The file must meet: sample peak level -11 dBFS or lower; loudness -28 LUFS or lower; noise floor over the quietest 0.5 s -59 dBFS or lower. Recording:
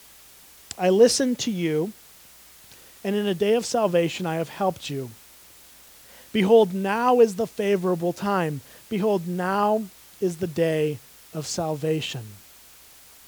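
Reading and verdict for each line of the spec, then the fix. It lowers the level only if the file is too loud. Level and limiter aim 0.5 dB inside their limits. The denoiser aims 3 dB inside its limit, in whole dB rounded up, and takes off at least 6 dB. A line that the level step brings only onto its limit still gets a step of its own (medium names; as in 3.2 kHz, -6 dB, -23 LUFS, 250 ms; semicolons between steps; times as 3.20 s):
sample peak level -5.0 dBFS: fail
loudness -23.5 LUFS: fail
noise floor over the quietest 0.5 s -50 dBFS: fail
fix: noise reduction 7 dB, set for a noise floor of -50 dBFS; trim -5 dB; peak limiter -11.5 dBFS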